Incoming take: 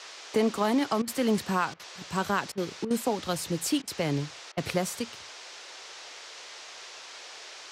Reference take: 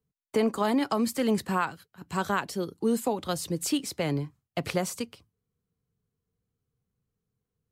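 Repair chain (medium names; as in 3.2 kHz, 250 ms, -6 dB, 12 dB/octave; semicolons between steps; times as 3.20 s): interpolate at 1.02/1.74/2.52/2.85/3.82/4.52 s, 54 ms; noise print and reduce 30 dB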